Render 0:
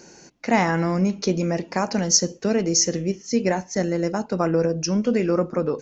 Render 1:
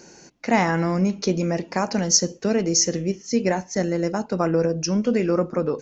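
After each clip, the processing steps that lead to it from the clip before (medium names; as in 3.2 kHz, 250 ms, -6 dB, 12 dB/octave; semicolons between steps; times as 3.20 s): no audible change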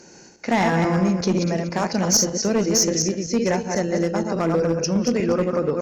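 backward echo that repeats 121 ms, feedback 46%, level -4 dB; one-sided clip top -13.5 dBFS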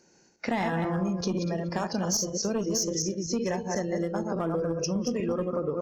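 compression 3:1, threshold -28 dBFS, peak gain reduction 11 dB; spectral noise reduction 15 dB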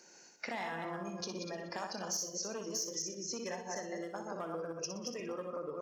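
high-pass 810 Hz 6 dB/octave; compression 2:1, threshold -52 dBFS, peak gain reduction 15 dB; on a send: flutter echo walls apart 10.5 m, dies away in 0.43 s; on the sum: trim +5 dB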